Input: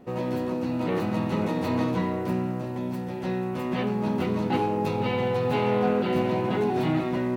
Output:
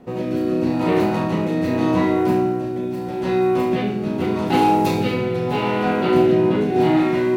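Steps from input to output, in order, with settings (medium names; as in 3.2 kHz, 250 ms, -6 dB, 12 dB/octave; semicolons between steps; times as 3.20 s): 4.46–5.13 s: treble shelf 5.8 kHz -> 3.9 kHz +10.5 dB; flutter echo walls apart 6 m, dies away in 0.5 s; rotary cabinet horn 0.8 Hz; trim +7 dB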